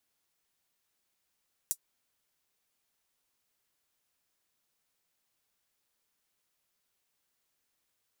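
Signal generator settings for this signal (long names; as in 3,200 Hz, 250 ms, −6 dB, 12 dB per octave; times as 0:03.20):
closed synth hi-hat, high-pass 7,500 Hz, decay 0.07 s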